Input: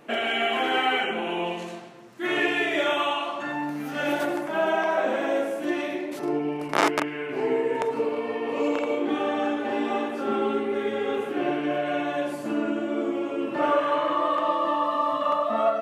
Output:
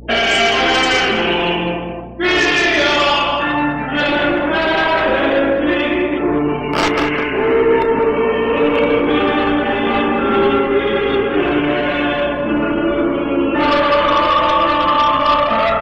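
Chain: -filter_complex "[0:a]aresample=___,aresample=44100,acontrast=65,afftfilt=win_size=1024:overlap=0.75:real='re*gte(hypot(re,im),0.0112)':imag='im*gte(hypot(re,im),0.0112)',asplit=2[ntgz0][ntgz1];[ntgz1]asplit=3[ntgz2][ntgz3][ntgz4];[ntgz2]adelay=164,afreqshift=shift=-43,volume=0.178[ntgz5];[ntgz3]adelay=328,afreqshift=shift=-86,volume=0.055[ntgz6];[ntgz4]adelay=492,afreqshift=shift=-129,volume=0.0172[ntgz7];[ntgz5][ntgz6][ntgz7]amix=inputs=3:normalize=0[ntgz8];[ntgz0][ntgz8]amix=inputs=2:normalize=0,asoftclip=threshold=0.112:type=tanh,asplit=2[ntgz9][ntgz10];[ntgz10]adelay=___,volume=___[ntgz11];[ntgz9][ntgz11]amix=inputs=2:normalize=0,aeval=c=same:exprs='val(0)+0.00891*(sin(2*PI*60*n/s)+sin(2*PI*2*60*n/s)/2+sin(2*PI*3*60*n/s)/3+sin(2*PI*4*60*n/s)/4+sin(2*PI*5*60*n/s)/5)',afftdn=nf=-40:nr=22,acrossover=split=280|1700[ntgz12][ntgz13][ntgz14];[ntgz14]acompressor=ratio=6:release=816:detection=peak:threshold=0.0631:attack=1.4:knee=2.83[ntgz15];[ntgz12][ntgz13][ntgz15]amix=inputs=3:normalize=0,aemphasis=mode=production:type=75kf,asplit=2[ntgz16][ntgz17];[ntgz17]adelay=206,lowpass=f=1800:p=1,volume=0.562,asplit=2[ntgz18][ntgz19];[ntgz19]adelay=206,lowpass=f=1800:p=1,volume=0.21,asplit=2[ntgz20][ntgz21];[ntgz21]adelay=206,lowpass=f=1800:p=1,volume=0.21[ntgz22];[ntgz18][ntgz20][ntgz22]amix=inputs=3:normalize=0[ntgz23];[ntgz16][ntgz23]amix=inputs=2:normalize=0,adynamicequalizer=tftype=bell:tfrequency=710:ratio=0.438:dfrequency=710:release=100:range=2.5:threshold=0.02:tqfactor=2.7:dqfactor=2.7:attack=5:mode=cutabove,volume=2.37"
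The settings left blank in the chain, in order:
8000, 33, 0.316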